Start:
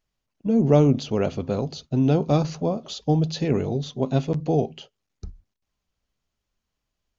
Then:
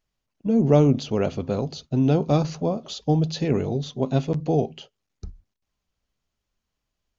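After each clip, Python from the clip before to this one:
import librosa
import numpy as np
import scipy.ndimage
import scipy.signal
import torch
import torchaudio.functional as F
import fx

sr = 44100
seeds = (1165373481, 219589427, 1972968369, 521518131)

y = x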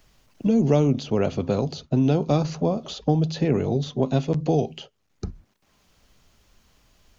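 y = fx.band_squash(x, sr, depth_pct=70)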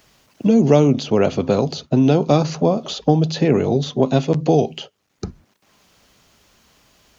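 y = fx.highpass(x, sr, hz=170.0, slope=6)
y = F.gain(torch.from_numpy(y), 7.5).numpy()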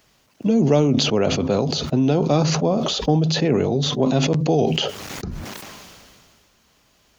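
y = fx.sustainer(x, sr, db_per_s=26.0)
y = F.gain(torch.from_numpy(y), -4.0).numpy()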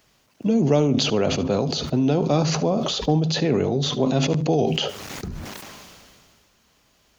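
y = fx.echo_feedback(x, sr, ms=72, feedback_pct=27, wet_db=-17.0)
y = F.gain(torch.from_numpy(y), -2.0).numpy()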